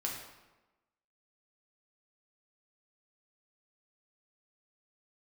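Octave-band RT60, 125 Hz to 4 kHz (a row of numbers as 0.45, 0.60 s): 1.0, 1.1, 1.1, 1.1, 0.95, 0.80 s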